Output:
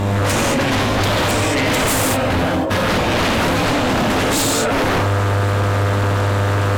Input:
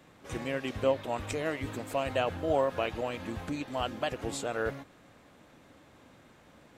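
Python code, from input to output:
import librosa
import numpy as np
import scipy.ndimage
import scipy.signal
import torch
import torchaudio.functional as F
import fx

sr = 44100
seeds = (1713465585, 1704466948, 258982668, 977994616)

y = fx.dmg_buzz(x, sr, base_hz=100.0, harmonics=11, level_db=-50.0, tilt_db=-4, odd_only=False)
y = fx.over_compress(y, sr, threshold_db=-42.0, ratio=-1.0)
y = fx.rev_gated(y, sr, seeds[0], gate_ms=250, shape='flat', drr_db=-4.0)
y = fx.fold_sine(y, sr, drive_db=20, ceiling_db=-13.5)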